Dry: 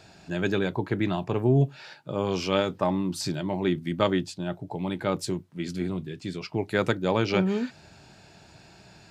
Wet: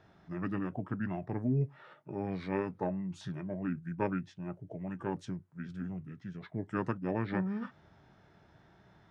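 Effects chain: formant shift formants -5 st; resonant high shelf 2.2 kHz -8.5 dB, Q 1.5; trim -9 dB

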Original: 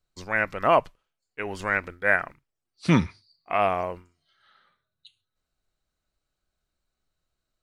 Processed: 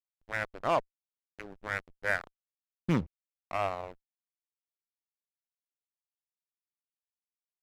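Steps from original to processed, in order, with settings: local Wiener filter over 25 samples; hysteresis with a dead band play -26.5 dBFS; Chebyshev shaper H 6 -25 dB, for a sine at -7.5 dBFS; trim -8 dB

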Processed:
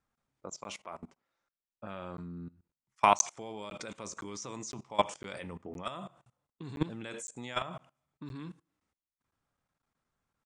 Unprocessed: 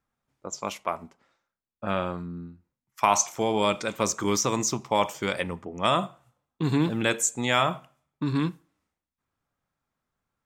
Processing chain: level held to a coarse grid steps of 21 dB; resampled via 22.05 kHz; crackling interface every 0.51 s, samples 512, zero, from 0.64 s

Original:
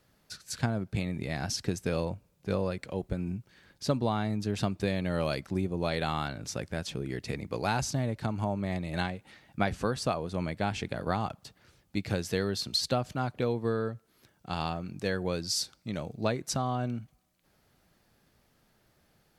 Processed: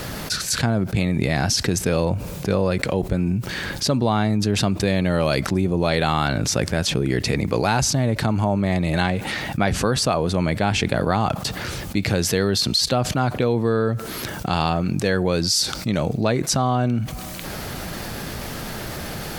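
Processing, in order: level flattener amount 70%; trim +5.5 dB

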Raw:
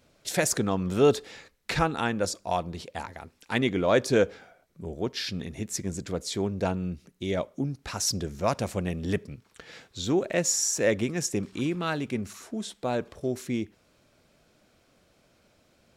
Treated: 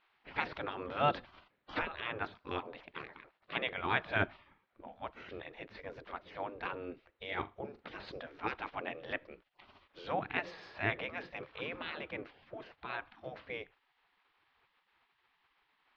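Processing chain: spectral gate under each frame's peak -15 dB weak; Bessel low-pass 2.1 kHz, order 8; 7.27–7.83 s: flutter echo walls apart 7.1 m, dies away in 0.2 s; trim +3 dB

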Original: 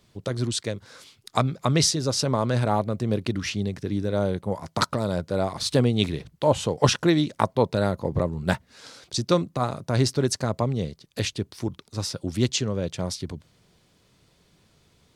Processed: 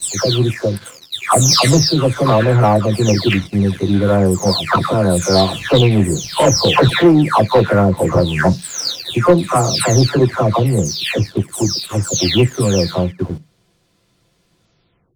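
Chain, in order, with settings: delay that grows with frequency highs early, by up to 504 ms; waveshaping leveller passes 2; on a send: reverberation RT60 0.15 s, pre-delay 3 ms, DRR 12.5 dB; on the sum: trim +6 dB

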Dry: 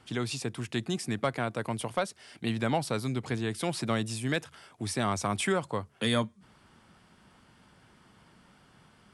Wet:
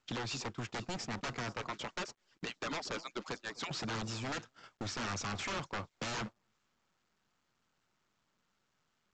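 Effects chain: 1.61–3.71 s: harmonic-percussive separation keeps percussive; bass shelf 140 Hz -5 dB; wavefolder -31.5 dBFS; compression 3:1, threshold -49 dBFS, peak gain reduction 10.5 dB; peaking EQ 1.3 kHz +5 dB 0.48 oct; echo whose repeats swap between lows and highs 244 ms, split 1.2 kHz, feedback 59%, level -12 dB; gate -49 dBFS, range -44 dB; trim +8.5 dB; µ-law 128 kbps 16 kHz

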